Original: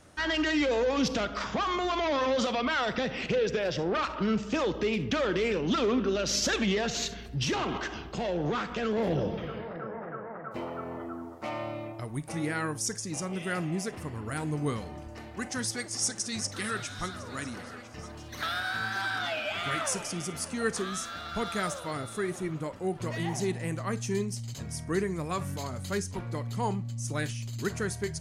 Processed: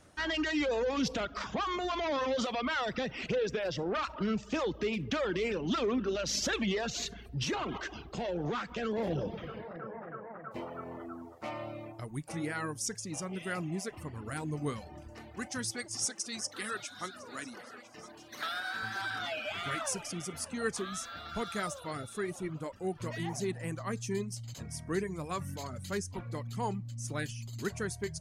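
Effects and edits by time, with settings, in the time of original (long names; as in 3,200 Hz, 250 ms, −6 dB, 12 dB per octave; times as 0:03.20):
0:16.05–0:18.83: high-pass filter 240 Hz
whole clip: reverb reduction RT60 0.54 s; level −3.5 dB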